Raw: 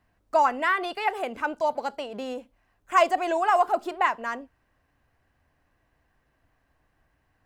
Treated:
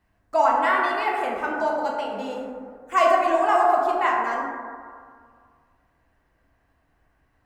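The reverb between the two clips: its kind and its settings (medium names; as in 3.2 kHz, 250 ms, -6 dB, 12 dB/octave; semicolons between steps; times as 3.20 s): plate-style reverb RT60 2 s, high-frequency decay 0.3×, DRR -3 dB; trim -2 dB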